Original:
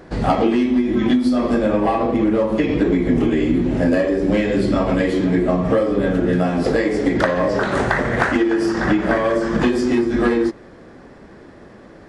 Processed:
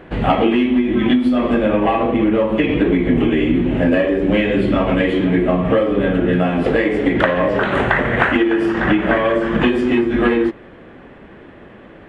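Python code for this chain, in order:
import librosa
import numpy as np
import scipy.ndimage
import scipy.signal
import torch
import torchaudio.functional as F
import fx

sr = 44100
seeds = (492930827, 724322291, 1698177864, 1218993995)

y = fx.high_shelf_res(x, sr, hz=3900.0, db=-9.5, q=3.0)
y = y * 10.0 ** (1.5 / 20.0)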